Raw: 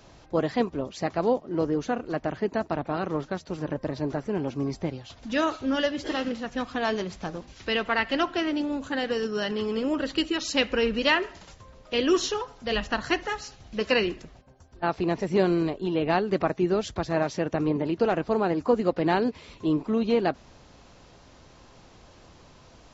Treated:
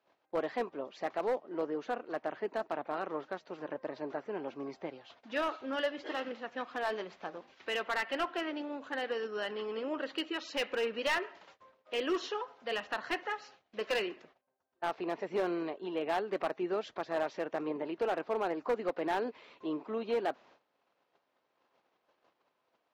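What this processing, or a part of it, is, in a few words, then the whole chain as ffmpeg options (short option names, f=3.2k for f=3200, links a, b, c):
walkie-talkie: -af "highpass=430,lowpass=2.9k,asoftclip=type=hard:threshold=-20.5dB,agate=range=-17dB:threshold=-54dB:ratio=16:detection=peak,volume=-5dB"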